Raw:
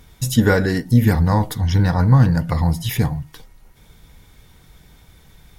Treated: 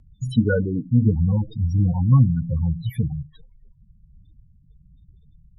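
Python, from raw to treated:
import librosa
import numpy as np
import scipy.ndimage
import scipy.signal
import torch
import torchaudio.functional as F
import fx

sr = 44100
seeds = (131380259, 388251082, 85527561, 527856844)

y = fx.spec_topn(x, sr, count=8)
y = fx.rotary_switch(y, sr, hz=5.0, then_hz=0.85, switch_at_s=0.45)
y = F.gain(torch.from_numpy(y), -1.5).numpy()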